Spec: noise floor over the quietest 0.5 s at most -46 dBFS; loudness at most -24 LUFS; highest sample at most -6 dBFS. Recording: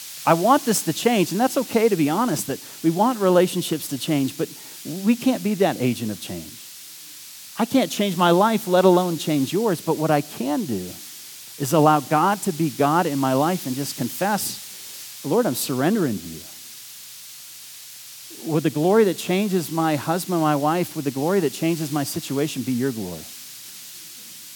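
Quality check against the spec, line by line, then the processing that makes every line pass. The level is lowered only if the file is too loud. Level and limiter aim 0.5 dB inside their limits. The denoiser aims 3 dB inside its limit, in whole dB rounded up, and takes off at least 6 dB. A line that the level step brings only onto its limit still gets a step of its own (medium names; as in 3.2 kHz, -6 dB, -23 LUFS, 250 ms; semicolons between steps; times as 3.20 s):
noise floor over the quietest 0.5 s -40 dBFS: fail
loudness -21.5 LUFS: fail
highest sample -2.0 dBFS: fail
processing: noise reduction 6 dB, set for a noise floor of -40 dBFS; trim -3 dB; peak limiter -6.5 dBFS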